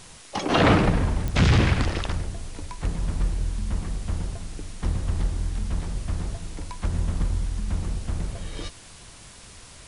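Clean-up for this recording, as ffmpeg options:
-af "adeclick=t=4,afftdn=nr=23:nf=-45"

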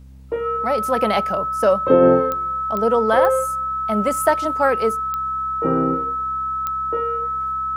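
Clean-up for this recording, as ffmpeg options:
-af "adeclick=t=4,bandreject=f=65.9:t=h:w=4,bandreject=f=131.8:t=h:w=4,bandreject=f=197.7:t=h:w=4,bandreject=f=263.6:t=h:w=4,bandreject=f=1300:w=30"

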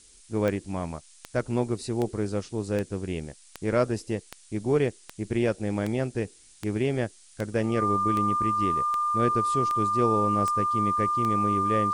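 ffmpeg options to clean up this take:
-af "adeclick=t=4,bandreject=f=1200:w=30,afftdn=nr=19:nf=-54"

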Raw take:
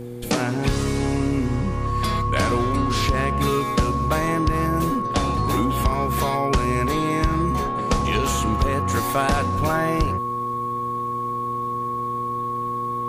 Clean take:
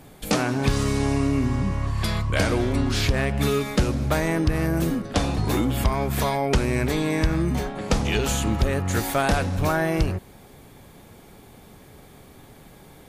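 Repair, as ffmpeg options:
-af "bandreject=f=120.6:t=h:w=4,bandreject=f=241.2:t=h:w=4,bandreject=f=361.8:t=h:w=4,bandreject=f=482.4:t=h:w=4,bandreject=f=1100:w=30"

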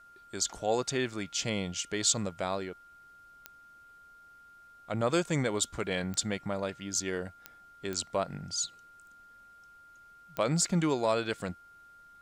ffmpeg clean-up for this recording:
-af "adeclick=t=4,bandreject=f=1400:w=30,agate=range=0.0891:threshold=0.00398"

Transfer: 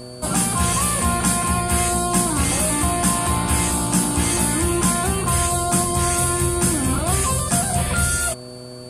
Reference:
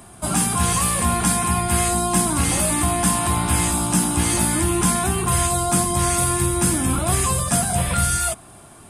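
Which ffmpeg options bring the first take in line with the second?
-af "bandreject=f=124:t=h:w=4,bandreject=f=248:t=h:w=4,bandreject=f=372:t=h:w=4,bandreject=f=496:t=h:w=4,bandreject=f=620:t=h:w=4,bandreject=f=4500:w=30"

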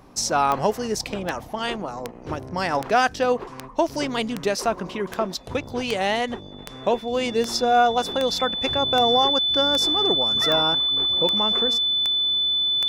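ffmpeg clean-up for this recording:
-af "adeclick=t=4,bandreject=f=3500:w=30"

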